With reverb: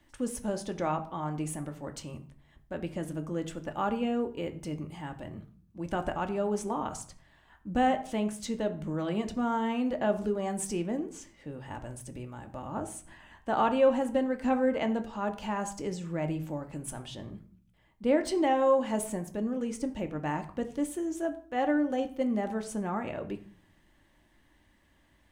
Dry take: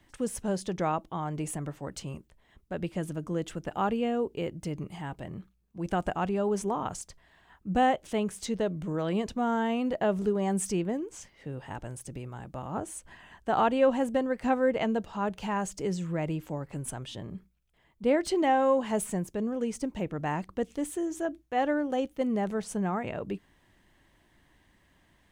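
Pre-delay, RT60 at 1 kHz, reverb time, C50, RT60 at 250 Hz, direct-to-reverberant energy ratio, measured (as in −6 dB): 3 ms, 0.45 s, 0.50 s, 13.5 dB, 0.75 s, 5.5 dB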